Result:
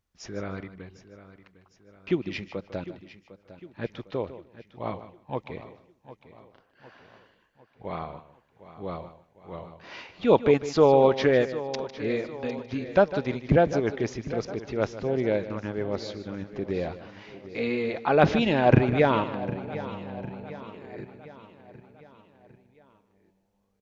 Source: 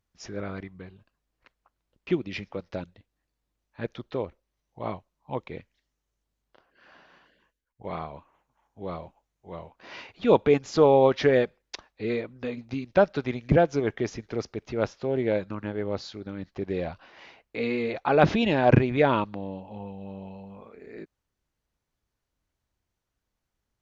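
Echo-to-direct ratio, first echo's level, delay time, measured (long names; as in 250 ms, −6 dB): −10.5 dB, −14.0 dB, 152 ms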